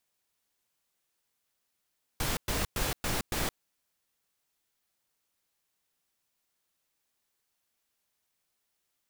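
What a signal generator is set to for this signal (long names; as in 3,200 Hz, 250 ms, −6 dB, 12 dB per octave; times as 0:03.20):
noise bursts pink, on 0.17 s, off 0.11 s, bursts 5, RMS −30.5 dBFS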